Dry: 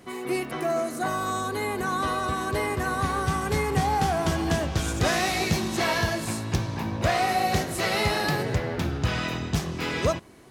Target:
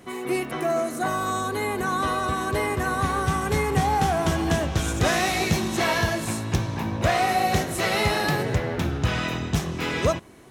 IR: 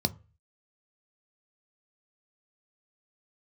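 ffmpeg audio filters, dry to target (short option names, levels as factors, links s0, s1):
-af "equalizer=f=4700:w=6.6:g=-5.5,volume=1.26"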